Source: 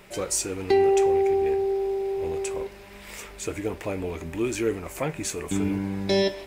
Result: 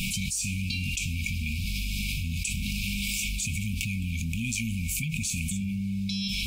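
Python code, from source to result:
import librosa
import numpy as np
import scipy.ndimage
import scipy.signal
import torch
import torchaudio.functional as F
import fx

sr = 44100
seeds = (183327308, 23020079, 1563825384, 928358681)

y = fx.brickwall_bandstop(x, sr, low_hz=250.0, high_hz=2200.0)
y = fx.env_flatten(y, sr, amount_pct=100)
y = F.gain(torch.from_numpy(y), -6.0).numpy()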